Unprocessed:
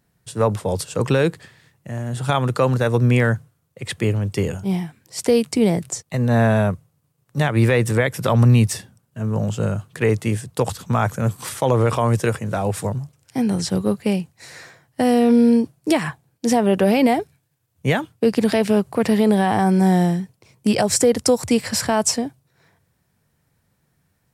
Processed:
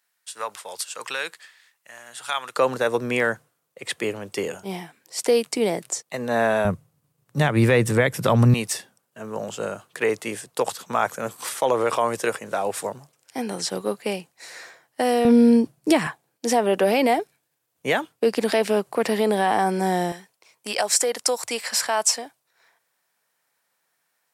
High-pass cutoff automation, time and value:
1.3 kHz
from 2.56 s 390 Hz
from 6.65 s 120 Hz
from 8.54 s 420 Hz
from 15.25 s 160 Hz
from 16.07 s 360 Hz
from 20.12 s 740 Hz

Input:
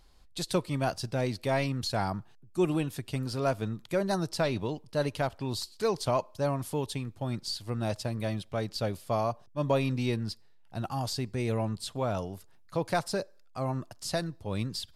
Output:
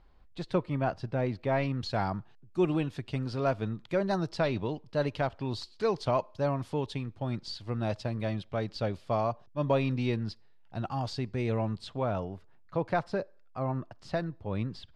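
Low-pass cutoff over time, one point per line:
1.50 s 2.1 kHz
1.90 s 3.8 kHz
11.70 s 3.8 kHz
12.31 s 2.3 kHz

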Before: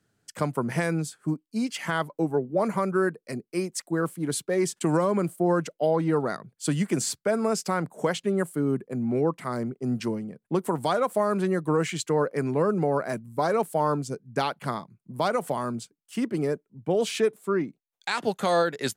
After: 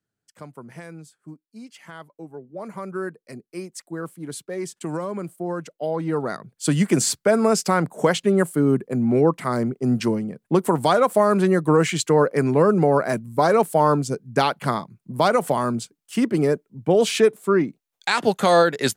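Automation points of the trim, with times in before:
2.37 s -13 dB
2.97 s -5 dB
5.62 s -5 dB
6.86 s +7 dB

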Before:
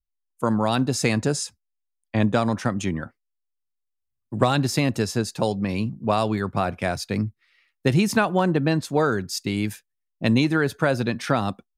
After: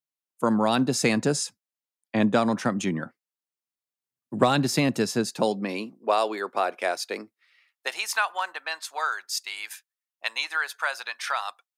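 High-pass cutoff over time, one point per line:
high-pass 24 dB/octave
5.26 s 150 Hz
6.05 s 370 Hz
7.25 s 370 Hz
8.13 s 900 Hz

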